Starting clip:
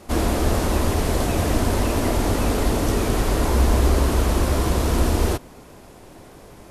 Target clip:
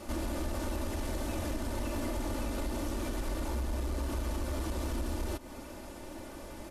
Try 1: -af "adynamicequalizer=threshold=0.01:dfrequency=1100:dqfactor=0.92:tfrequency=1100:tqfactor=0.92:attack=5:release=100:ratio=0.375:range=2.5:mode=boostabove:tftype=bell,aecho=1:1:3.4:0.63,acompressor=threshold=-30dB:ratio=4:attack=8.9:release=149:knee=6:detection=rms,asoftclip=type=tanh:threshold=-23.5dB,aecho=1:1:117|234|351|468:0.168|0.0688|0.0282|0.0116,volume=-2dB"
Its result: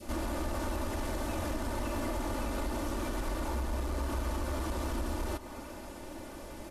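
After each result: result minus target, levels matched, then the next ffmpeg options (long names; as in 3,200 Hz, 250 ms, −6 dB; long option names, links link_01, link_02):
echo-to-direct +9.5 dB; 1,000 Hz band +3.0 dB
-af "adynamicequalizer=threshold=0.01:dfrequency=1100:dqfactor=0.92:tfrequency=1100:tqfactor=0.92:attack=5:release=100:ratio=0.375:range=2.5:mode=boostabove:tftype=bell,aecho=1:1:3.4:0.63,acompressor=threshold=-30dB:ratio=4:attack=8.9:release=149:knee=6:detection=rms,asoftclip=type=tanh:threshold=-23.5dB,aecho=1:1:117|234:0.0562|0.0231,volume=-2dB"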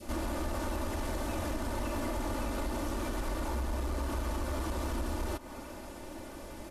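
1,000 Hz band +3.0 dB
-af "aecho=1:1:3.4:0.63,acompressor=threshold=-30dB:ratio=4:attack=8.9:release=149:knee=6:detection=rms,asoftclip=type=tanh:threshold=-23.5dB,aecho=1:1:117|234:0.0562|0.0231,volume=-2dB"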